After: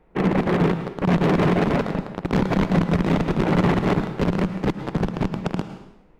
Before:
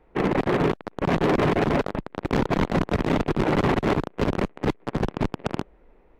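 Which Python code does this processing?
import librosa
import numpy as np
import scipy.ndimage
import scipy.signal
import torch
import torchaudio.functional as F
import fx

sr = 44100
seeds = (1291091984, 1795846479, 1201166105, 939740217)

y = fx.peak_eq(x, sr, hz=180.0, db=10.0, octaves=0.29)
y = fx.rev_plate(y, sr, seeds[0], rt60_s=0.81, hf_ratio=1.0, predelay_ms=95, drr_db=9.0)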